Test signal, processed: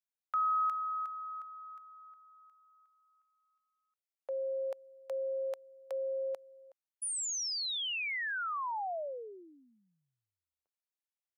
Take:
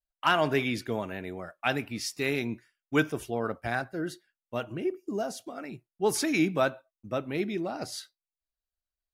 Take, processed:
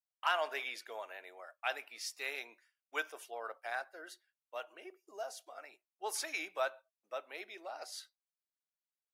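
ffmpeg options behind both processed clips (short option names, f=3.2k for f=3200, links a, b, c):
-af "highpass=f=570:w=0.5412,highpass=f=570:w=1.3066,volume=-7.5dB"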